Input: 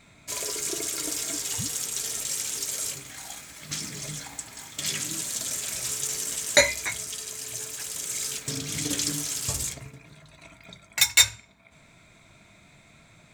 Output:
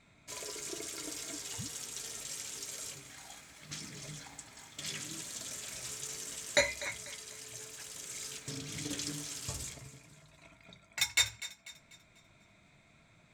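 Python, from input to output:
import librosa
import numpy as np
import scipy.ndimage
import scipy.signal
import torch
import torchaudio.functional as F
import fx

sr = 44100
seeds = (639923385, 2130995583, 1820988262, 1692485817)

y = fx.high_shelf(x, sr, hz=9000.0, db=-10.5)
y = fx.echo_thinned(y, sr, ms=246, feedback_pct=42, hz=420.0, wet_db=-15)
y = F.gain(torch.from_numpy(y), -8.5).numpy()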